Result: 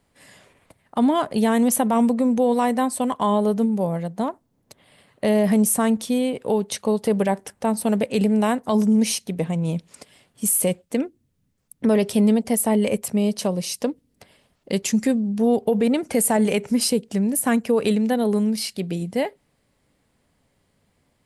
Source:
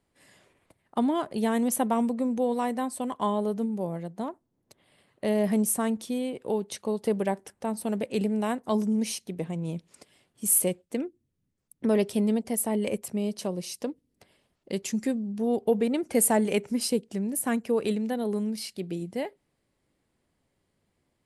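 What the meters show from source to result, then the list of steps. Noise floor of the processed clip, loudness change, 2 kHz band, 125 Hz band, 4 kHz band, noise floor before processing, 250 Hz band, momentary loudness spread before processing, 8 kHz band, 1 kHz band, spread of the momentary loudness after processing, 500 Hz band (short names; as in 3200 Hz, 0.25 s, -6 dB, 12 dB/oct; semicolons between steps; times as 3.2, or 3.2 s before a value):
-68 dBFS, +7.0 dB, +7.0 dB, +8.5 dB, +8.0 dB, -77 dBFS, +7.5 dB, 10 LU, +4.5 dB, +7.0 dB, 8 LU, +6.0 dB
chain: bell 350 Hz -7.5 dB 0.26 oct; limiter -20 dBFS, peak gain reduction 10.5 dB; gain +9 dB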